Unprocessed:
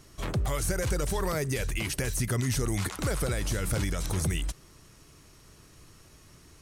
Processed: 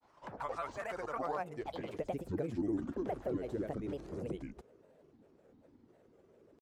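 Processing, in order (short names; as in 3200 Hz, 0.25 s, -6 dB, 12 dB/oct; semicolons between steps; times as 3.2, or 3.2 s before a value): band-pass sweep 950 Hz -> 380 Hz, 1.15–2.12; grains, pitch spread up and down by 7 st; gain +2.5 dB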